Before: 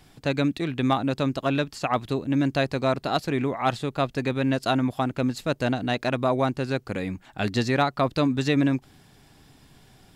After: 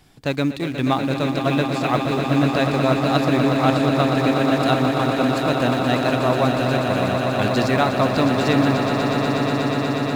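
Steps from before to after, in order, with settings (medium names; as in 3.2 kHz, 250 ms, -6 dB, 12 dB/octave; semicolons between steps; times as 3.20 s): in parallel at -10 dB: small samples zeroed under -27.5 dBFS; on the sum: echo with a slow build-up 121 ms, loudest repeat 8, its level -9 dB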